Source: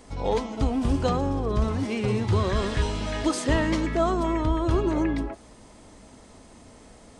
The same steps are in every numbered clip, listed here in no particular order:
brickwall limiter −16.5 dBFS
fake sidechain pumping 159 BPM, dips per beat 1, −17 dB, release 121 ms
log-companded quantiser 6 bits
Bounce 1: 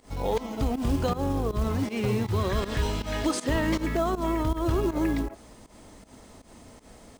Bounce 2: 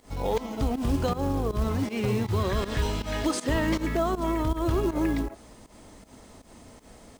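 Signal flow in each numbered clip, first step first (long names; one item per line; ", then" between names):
log-companded quantiser, then brickwall limiter, then fake sidechain pumping
brickwall limiter, then fake sidechain pumping, then log-companded quantiser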